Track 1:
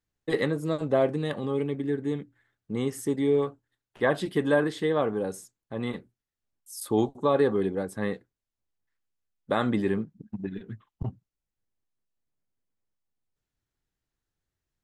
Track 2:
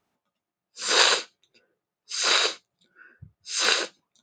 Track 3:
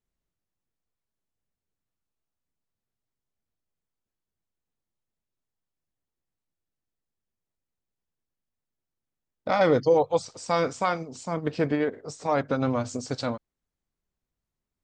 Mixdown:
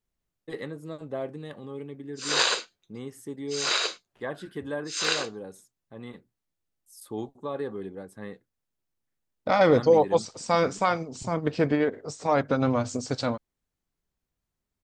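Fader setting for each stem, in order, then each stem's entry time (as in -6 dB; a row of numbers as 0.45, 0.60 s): -10.0, -4.5, +1.5 dB; 0.20, 1.40, 0.00 s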